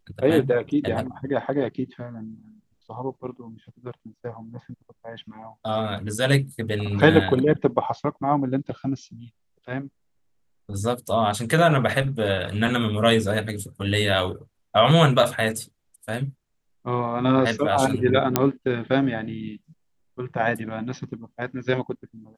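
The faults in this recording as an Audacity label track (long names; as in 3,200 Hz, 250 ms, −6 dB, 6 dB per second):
18.360000	18.360000	click −2 dBFS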